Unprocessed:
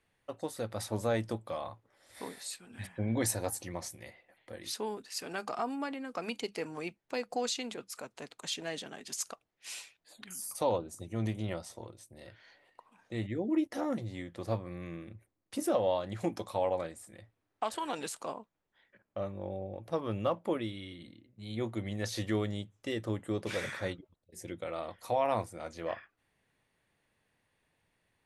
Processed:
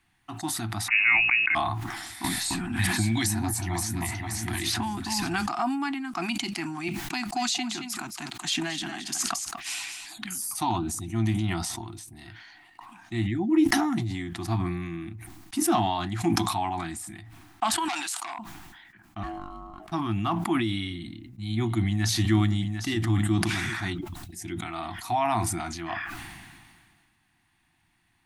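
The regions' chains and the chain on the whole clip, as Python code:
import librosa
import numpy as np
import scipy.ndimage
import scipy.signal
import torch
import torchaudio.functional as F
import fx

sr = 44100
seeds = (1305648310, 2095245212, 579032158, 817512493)

y = fx.chain(x, sr, fx.freq_invert(carrier_hz=2700),
    fx.hum_notches(base_hz=60, count=8),
    fx.env_flatten(amount_pct=50), at=(0.88, 1.55))
y = fx.chain(y, sr, fx.peak_eq(hz=78.0, db=7.5, octaves=0.62),
    fx.echo_alternate(ms=262, hz=1400.0, feedback_pct=52, wet_db=-6.0),
    fx.band_squash(depth_pct=100), at=(2.24, 5.48))
y = fx.chain(y, sr, fx.echo_single(ms=222, db=-12.0),
    fx.band_squash(depth_pct=40), at=(6.88, 10.38))
y = fx.chain(y, sr, fx.highpass(hz=600.0, slope=12),
    fx.transformer_sat(knee_hz=2900.0), at=(17.88, 18.39))
y = fx.chain(y, sr, fx.median_filter(points=9),
    fx.peak_eq(hz=390.0, db=-14.0, octaves=1.1),
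    fx.ring_mod(carrier_hz=530.0), at=(19.23, 19.92))
y = fx.chain(y, sr, fx.low_shelf(hz=150.0, db=6.5),
    fx.echo_single(ms=750, db=-12.5), at=(20.9, 23.82))
y = scipy.signal.sosfilt(scipy.signal.ellip(3, 1.0, 40, [350.0, 710.0], 'bandstop', fs=sr, output='sos'), y)
y = fx.sustainer(y, sr, db_per_s=31.0)
y = y * 10.0 ** (8.0 / 20.0)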